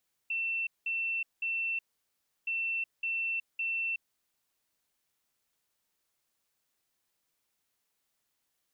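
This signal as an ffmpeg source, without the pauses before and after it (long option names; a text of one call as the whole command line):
ffmpeg -f lavfi -i "aevalsrc='0.0335*sin(2*PI*2690*t)*clip(min(mod(mod(t,2.17),0.56),0.37-mod(mod(t,2.17),0.56))/0.005,0,1)*lt(mod(t,2.17),1.68)':duration=4.34:sample_rate=44100" out.wav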